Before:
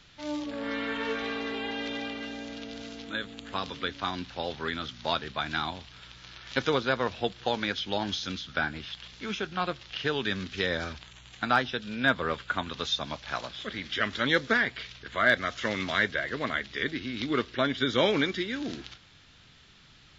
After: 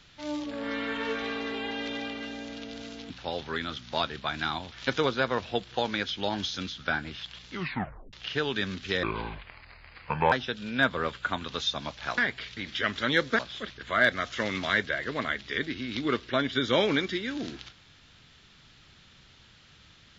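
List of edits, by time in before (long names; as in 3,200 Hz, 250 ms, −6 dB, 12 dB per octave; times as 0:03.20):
0:03.10–0:04.22: remove
0:05.84–0:06.41: remove
0:09.21: tape stop 0.61 s
0:10.72–0:11.57: play speed 66%
0:13.43–0:13.74: swap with 0:14.56–0:14.95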